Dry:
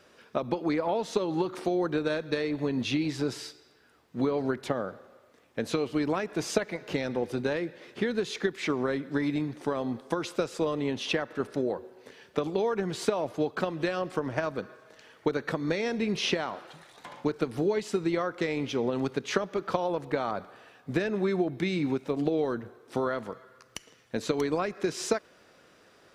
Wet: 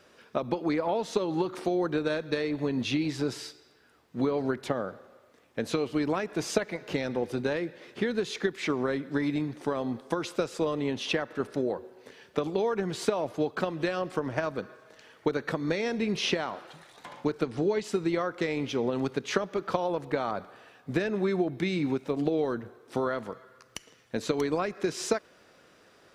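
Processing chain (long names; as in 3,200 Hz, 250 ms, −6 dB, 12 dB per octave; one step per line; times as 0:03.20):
0:17.43–0:17.84: low-pass filter 8,200 Hz 24 dB per octave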